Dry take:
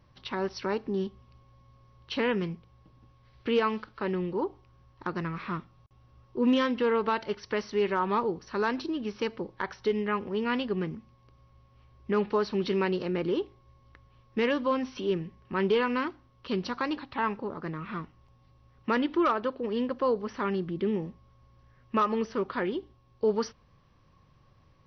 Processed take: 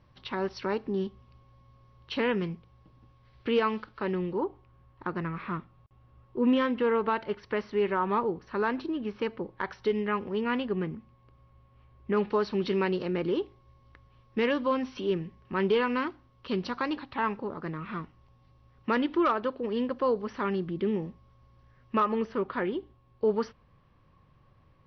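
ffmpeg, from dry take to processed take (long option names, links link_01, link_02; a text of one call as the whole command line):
ffmpeg -i in.wav -af "asetnsamples=nb_out_samples=441:pad=0,asendcmd='4.38 lowpass f 2800;9.61 lowpass f 4600;10.41 lowpass f 3000;12.17 lowpass f 5200;22 lowpass f 3200',lowpass=4900" out.wav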